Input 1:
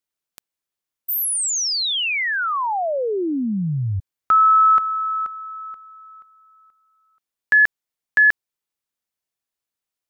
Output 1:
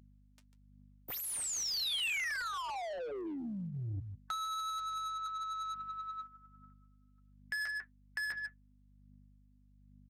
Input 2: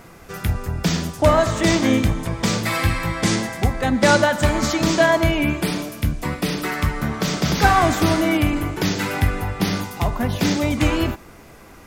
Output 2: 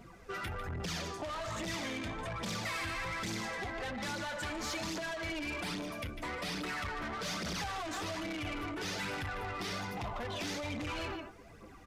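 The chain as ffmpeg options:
-filter_complex "[0:a]afftdn=nr=16:nf=-36,equalizer=f=12k:t=o:w=0.29:g=-6.5,acompressor=threshold=-18dB:ratio=16:attack=4.4:release=482:knee=6:detection=rms,asplit=2[a][b];[b]aecho=0:1:148:0.188[c];[a][c]amix=inputs=2:normalize=0,flanger=delay=9.4:depth=1:regen=-53:speed=0.22:shape=sinusoidal,aeval=exprs='val(0)+0.00158*(sin(2*PI*50*n/s)+sin(2*PI*2*50*n/s)/2+sin(2*PI*3*50*n/s)/3+sin(2*PI*4*50*n/s)/4+sin(2*PI*5*50*n/s)/5)':c=same,aphaser=in_gain=1:out_gain=1:delay=3.3:decay=0.5:speed=1.2:type=triangular,asoftclip=type=tanh:threshold=-25dB,asplit=2[d][e];[e]highpass=f=720:p=1,volume=19dB,asoftclip=type=tanh:threshold=-25dB[f];[d][f]amix=inputs=2:normalize=0,lowpass=f=6.1k:p=1,volume=-6dB,acrossover=split=120|2400[g][h][i];[h]acompressor=threshold=-35dB:ratio=6:attack=41:release=67:knee=2.83:detection=peak[j];[g][j][i]amix=inputs=3:normalize=0,aresample=32000,aresample=44100,volume=-6dB"

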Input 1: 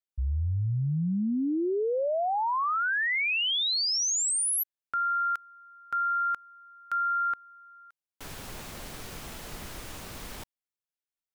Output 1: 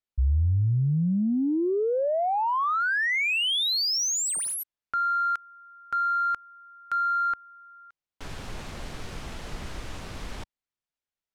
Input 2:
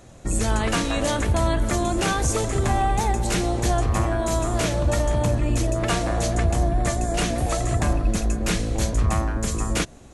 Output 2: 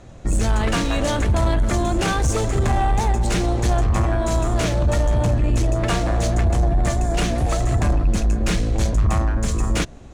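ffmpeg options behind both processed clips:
-af "lowshelf=f=99:g=6,adynamicsmooth=sensitivity=7:basefreq=6.4k,asoftclip=type=tanh:threshold=-14dB,volume=2.5dB"

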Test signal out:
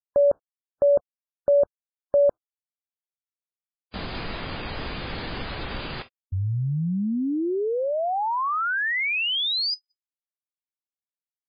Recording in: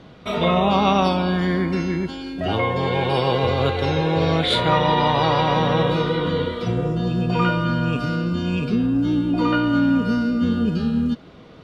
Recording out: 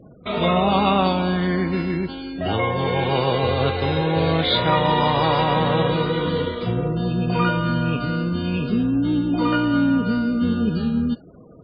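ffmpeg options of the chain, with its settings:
-af "afftfilt=real='re*gte(hypot(re,im),0.01)':imag='im*gte(hypot(re,im),0.01)':win_size=1024:overlap=0.75" -ar 11025 -c:a libmp3lame -b:a 16k

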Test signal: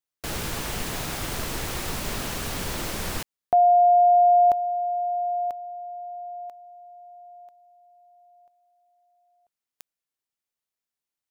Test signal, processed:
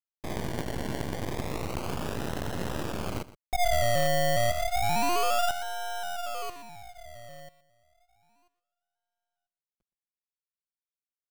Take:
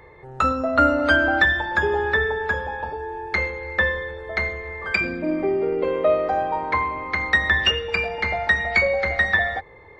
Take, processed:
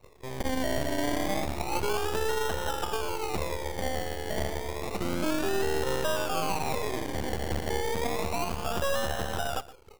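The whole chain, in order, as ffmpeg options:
-filter_complex "[0:a]lowpass=f=1k:w=0.5412,lowpass=f=1k:w=1.3066,anlmdn=0.158,highpass=65,asplit=2[a][b];[b]acompressor=threshold=-26dB:ratio=6:attack=8.3:release=732:knee=6:detection=rms,volume=0dB[c];[a][c]amix=inputs=2:normalize=0,alimiter=limit=-17.5dB:level=0:latency=1:release=132,acrusher=samples=27:mix=1:aa=0.000001:lfo=1:lforange=16.2:lforate=0.3,aecho=1:1:120:0.133,aeval=exprs='max(val(0),0)':c=same"

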